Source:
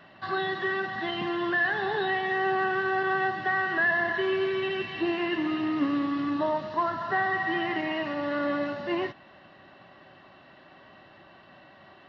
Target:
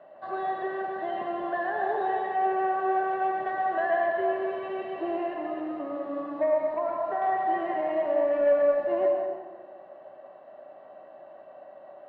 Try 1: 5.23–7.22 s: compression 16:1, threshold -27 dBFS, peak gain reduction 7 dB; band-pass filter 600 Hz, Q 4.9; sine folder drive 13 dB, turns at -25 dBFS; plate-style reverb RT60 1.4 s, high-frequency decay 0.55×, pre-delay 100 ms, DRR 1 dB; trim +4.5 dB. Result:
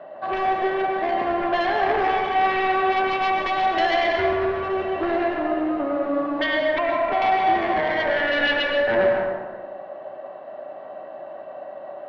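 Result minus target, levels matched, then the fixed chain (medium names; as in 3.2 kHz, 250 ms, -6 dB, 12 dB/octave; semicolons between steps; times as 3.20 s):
sine folder: distortion +21 dB
5.23–7.22 s: compression 16:1, threshold -27 dBFS, peak gain reduction 7 dB; band-pass filter 600 Hz, Q 4.9; sine folder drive 2 dB, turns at -25 dBFS; plate-style reverb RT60 1.4 s, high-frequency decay 0.55×, pre-delay 100 ms, DRR 1 dB; trim +4.5 dB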